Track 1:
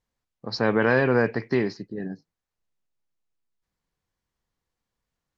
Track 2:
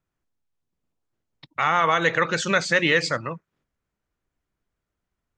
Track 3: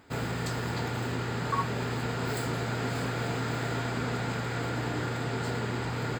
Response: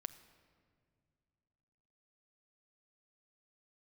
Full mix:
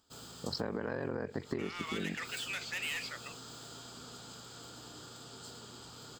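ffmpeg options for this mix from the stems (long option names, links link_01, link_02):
-filter_complex "[0:a]lowpass=2000,aeval=exprs='val(0)*sin(2*PI*23*n/s)':channel_layout=same,volume=0dB,asplit=2[link_01][link_02];[1:a]bandpass=frequency=2800:width_type=q:width=4.2:csg=0,asoftclip=type=tanh:threshold=-32.5dB,volume=-1dB[link_03];[2:a]equalizer=frequency=125:width_type=o:width=0.33:gain=-6,equalizer=frequency=1250:width_type=o:width=0.33:gain=7,equalizer=frequency=2000:width_type=o:width=0.33:gain=-8,equalizer=frequency=3150:width_type=o:width=0.33:gain=10,volume=-19.5dB[link_04];[link_02]apad=whole_len=272994[link_05];[link_04][link_05]sidechaincompress=threshold=-37dB:ratio=3:attack=20:release=162[link_06];[link_01][link_06]amix=inputs=2:normalize=0,highshelf=frequency=3600:width_type=q:width=1.5:gain=13.5,alimiter=limit=-17dB:level=0:latency=1:release=105,volume=0dB[link_07];[link_03][link_07]amix=inputs=2:normalize=0,acompressor=threshold=-32dB:ratio=10"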